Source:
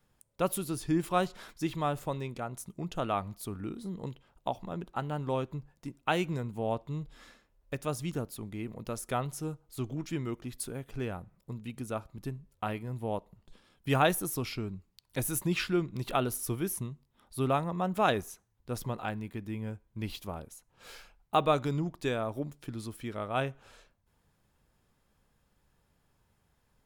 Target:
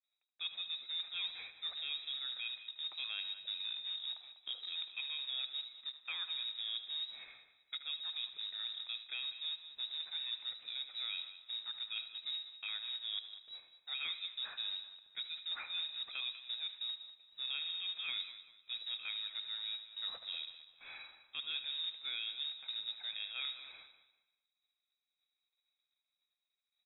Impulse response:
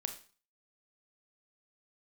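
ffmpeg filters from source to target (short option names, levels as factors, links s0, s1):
-filter_complex "[0:a]asuperstop=centerf=950:order=4:qfactor=1.1,agate=range=0.0224:threshold=0.00126:ratio=3:detection=peak,equalizer=f=1400:t=o:w=0.24:g=11.5,areverse,acompressor=threshold=0.01:ratio=6,areverse,acrusher=bits=3:mode=log:mix=0:aa=0.000001,aecho=1:1:196|392|588:0.2|0.0579|0.0168,asplit=2[s0][s1];[1:a]atrim=start_sample=2205,adelay=76[s2];[s1][s2]afir=irnorm=-1:irlink=0,volume=0.237[s3];[s0][s3]amix=inputs=2:normalize=0,acrossover=split=2600[s4][s5];[s5]acompressor=threshold=0.00112:ratio=4:attack=1:release=60[s6];[s4][s6]amix=inputs=2:normalize=0,lowpass=f=3300:t=q:w=0.5098,lowpass=f=3300:t=q:w=0.6013,lowpass=f=3300:t=q:w=0.9,lowpass=f=3300:t=q:w=2.563,afreqshift=-3900,volume=1.12"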